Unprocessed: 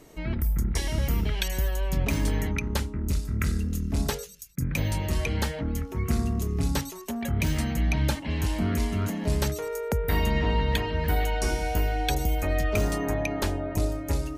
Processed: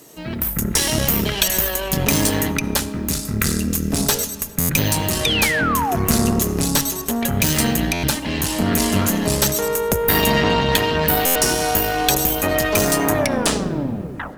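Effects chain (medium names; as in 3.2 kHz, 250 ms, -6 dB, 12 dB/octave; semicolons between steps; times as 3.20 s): tape stop on the ending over 1.22 s; high-pass 130 Hz 12 dB/octave; treble shelf 4.7 kHz +12 dB; band-stop 2.2 kHz, Q 12; in parallel at -2 dB: peak limiter -22 dBFS, peak gain reduction 14.5 dB; on the sum: level rider; bit crusher 9-bit; Chebyshev shaper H 6 -17 dB, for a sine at -0.5 dBFS; painted sound fall, 5.24–5.96 s, 660–3800 Hz -20 dBFS; reverberation RT60 3.4 s, pre-delay 25 ms, DRR 14.5 dB; buffer glitch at 4.59/7.93/11.25 s, samples 512, times 8; trim -1 dB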